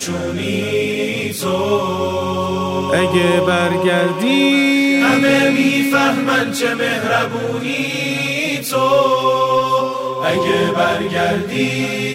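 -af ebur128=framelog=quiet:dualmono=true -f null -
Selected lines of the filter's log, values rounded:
Integrated loudness:
  I:         -12.8 LUFS
  Threshold: -22.8 LUFS
Loudness range:
  LRA:         3.2 LU
  Threshold: -32.4 LUFS
  LRA low:   -13.8 LUFS
  LRA high:  -10.6 LUFS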